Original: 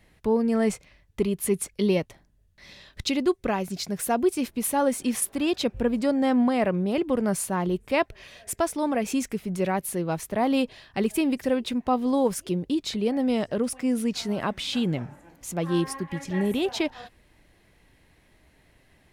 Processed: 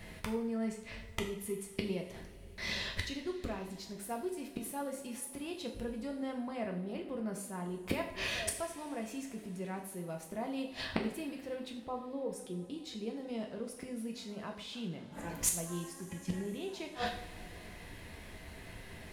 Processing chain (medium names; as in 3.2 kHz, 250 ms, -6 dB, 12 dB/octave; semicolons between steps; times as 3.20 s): 11.72–12.70 s: resonances exaggerated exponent 1.5; inverted gate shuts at -26 dBFS, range -26 dB; two-slope reverb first 0.56 s, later 4.9 s, from -20 dB, DRR 1 dB; trim +8.5 dB